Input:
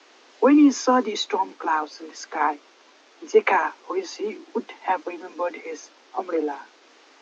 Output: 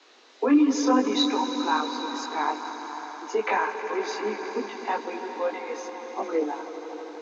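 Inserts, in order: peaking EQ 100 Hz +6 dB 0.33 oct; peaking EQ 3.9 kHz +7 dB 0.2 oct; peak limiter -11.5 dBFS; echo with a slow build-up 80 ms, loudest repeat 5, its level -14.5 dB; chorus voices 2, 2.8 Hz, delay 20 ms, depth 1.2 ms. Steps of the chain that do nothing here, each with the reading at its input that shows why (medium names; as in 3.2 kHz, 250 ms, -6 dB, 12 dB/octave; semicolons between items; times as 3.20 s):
peaking EQ 100 Hz: input has nothing below 200 Hz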